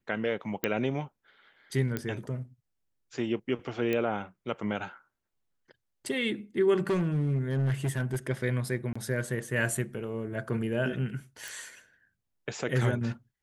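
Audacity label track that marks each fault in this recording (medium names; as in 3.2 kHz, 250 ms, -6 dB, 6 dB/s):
0.640000	0.640000	pop -12 dBFS
1.970000	1.970000	pop -17 dBFS
3.930000	3.930000	pop -17 dBFS
6.780000	8.170000	clipped -23.5 dBFS
8.930000	8.960000	dropout 25 ms
11.480000	11.480000	pop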